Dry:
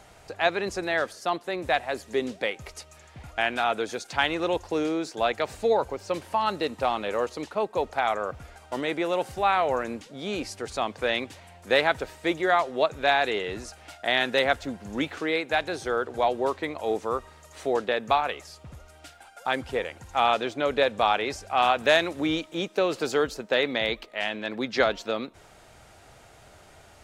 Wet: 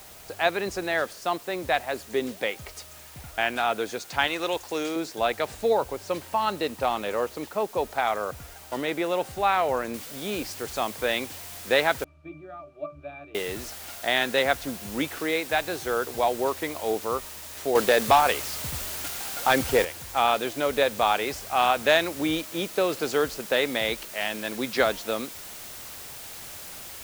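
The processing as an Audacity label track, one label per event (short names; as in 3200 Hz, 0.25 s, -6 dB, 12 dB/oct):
4.270000	4.960000	tilt +2.5 dB/oct
7.210000	7.790000	high shelf 6200 Hz -10.5 dB
9.940000	9.940000	noise floor step -48 dB -41 dB
12.040000	13.350000	octave resonator D, decay 0.21 s
17.750000	19.850000	sample leveller passes 2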